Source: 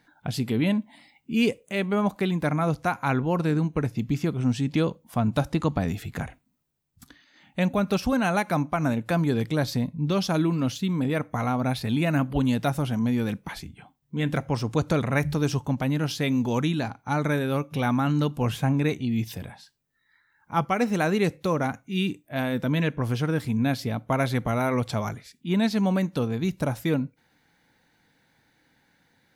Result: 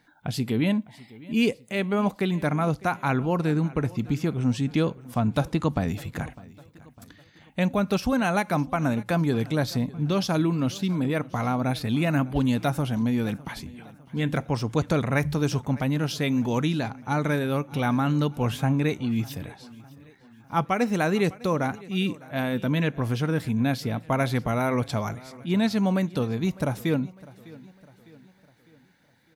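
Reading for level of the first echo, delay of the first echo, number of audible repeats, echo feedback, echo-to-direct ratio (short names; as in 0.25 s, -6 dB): -21.0 dB, 0.604 s, 3, 49%, -20.0 dB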